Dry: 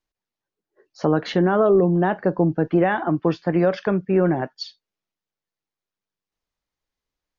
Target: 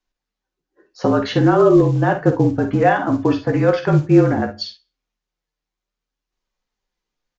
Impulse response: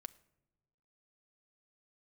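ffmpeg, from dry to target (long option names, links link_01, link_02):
-filter_complex "[0:a]bandreject=frequency=690:width=21,asplit=2[link_01][link_02];[link_02]adelay=16,volume=-8dB[link_03];[link_01][link_03]amix=inputs=2:normalize=0,afreqshift=-39,flanger=delay=2.6:depth=4.2:regen=68:speed=0.63:shape=triangular,acrusher=bits=8:mode=log:mix=0:aa=0.000001,aecho=1:1:51|61:0.316|0.211,asplit=2[link_04][link_05];[1:a]atrim=start_sample=2205,afade=type=out:start_time=0.27:duration=0.01,atrim=end_sample=12348[link_06];[link_05][link_06]afir=irnorm=-1:irlink=0,volume=11.5dB[link_07];[link_04][link_07]amix=inputs=2:normalize=0,aresample=16000,aresample=44100,volume=-2dB"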